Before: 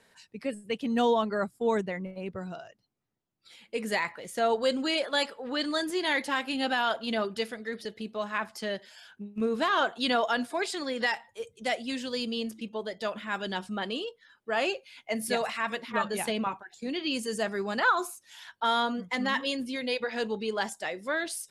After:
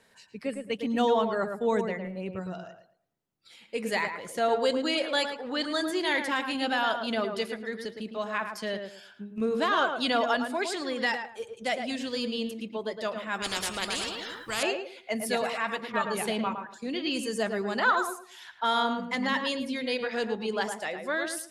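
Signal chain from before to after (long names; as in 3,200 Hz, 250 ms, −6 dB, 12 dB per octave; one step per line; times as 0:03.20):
on a send: tape delay 109 ms, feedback 28%, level −5 dB, low-pass 1,700 Hz
0:13.42–0:14.63: on the sum: every bin compressed towards the loudest bin 4 to 1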